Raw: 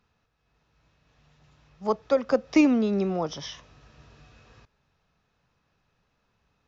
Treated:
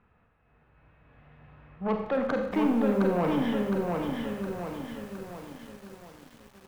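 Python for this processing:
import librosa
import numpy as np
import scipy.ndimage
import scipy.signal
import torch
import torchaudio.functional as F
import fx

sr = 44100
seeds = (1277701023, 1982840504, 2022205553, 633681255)

p1 = scipy.signal.sosfilt(scipy.signal.butter(4, 2300.0, 'lowpass', fs=sr, output='sos'), x)
p2 = fx.over_compress(p1, sr, threshold_db=-29.0, ratio=-1.0)
p3 = p1 + (p2 * 10.0 ** (1.0 / 20.0))
p4 = 10.0 ** (-18.5 / 20.0) * np.tanh(p3 / 10.0 ** (-18.5 / 20.0))
p5 = fx.rev_schroeder(p4, sr, rt60_s=0.8, comb_ms=30, drr_db=3.5)
p6 = fx.echo_crushed(p5, sr, ms=713, feedback_pct=55, bits=8, wet_db=-3)
y = p6 * 10.0 ** (-4.0 / 20.0)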